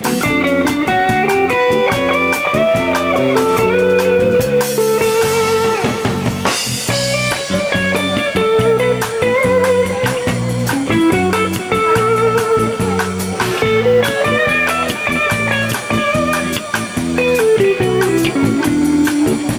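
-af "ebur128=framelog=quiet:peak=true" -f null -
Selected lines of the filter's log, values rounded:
Integrated loudness:
  I:         -14.2 LUFS
  Threshold: -24.2 LUFS
Loudness range:
  LRA:         1.8 LU
  Threshold: -34.3 LUFS
  LRA low:   -15.0 LUFS
  LRA high:  -13.3 LUFS
True peak:
  Peak:       -1.9 dBFS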